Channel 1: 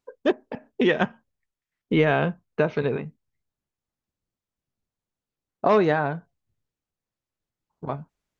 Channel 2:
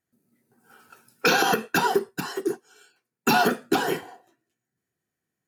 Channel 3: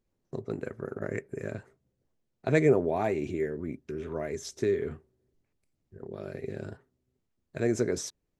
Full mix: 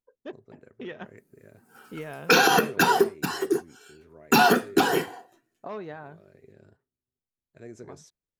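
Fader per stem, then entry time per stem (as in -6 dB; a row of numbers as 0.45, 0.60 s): -18.0, +2.0, -16.5 dB; 0.00, 1.05, 0.00 s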